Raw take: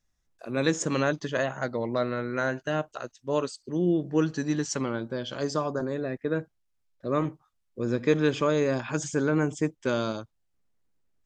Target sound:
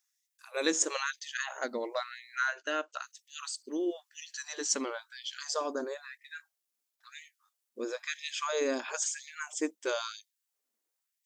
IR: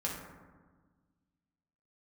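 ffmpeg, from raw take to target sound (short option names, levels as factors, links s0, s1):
-filter_complex "[0:a]asettb=1/sr,asplit=3[s0][s1][s2];[s0]atrim=end=2.394[s3];[s1]atrim=start=2.39:end=3.02,asetpts=PTS-STARTPTS,afade=t=in:d=0.004:c=qsin,afade=t=out:st=0.626:d=0.004:c=qsin,highpass=130,equalizer=f=230:t=q:w=4:g=-9,equalizer=f=380:t=q:w=4:g=-5,equalizer=f=790:t=q:w=4:g=-7,equalizer=f=1400:t=q:w=4:g=6,equalizer=f=2700:t=q:w=4:g=3,lowpass=f=6800:w=0.5412,lowpass=f=6800:w=1.3066[s4];[s2]atrim=start=3.016[s5];[s3][s4]acrossfade=d=0.004:c1=hsin:c2=qsin[s6];[s6][s5]acrossfade=d=0.004:c1=qsin:c2=hsin,crystalizer=i=2.5:c=0,afftfilt=real='re*gte(b*sr/1024,210*pow(1800/210,0.5+0.5*sin(2*PI*1*pts/sr)))':imag='im*gte(b*sr/1024,210*pow(1800/210,0.5+0.5*sin(2*PI*1*pts/sr)))':win_size=1024:overlap=0.75,volume=0.596"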